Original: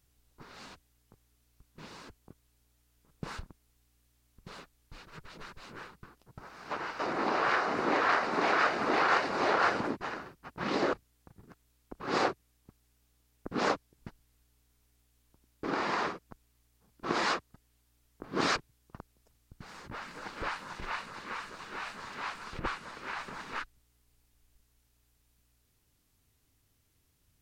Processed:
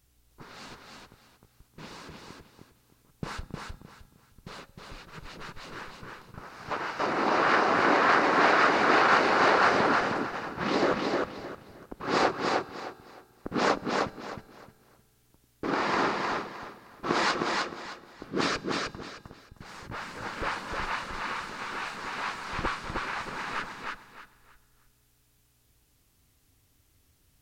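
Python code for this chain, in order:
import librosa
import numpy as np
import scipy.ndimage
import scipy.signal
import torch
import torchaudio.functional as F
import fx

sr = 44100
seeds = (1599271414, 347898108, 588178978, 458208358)

y = fx.rotary(x, sr, hz=6.0, at=(17.31, 19.65))
y = fx.echo_feedback(y, sr, ms=309, feedback_pct=26, wet_db=-3)
y = fx.rev_fdn(y, sr, rt60_s=2.1, lf_ratio=1.5, hf_ratio=0.9, size_ms=11.0, drr_db=20.0)
y = F.gain(torch.from_numpy(y), 4.0).numpy()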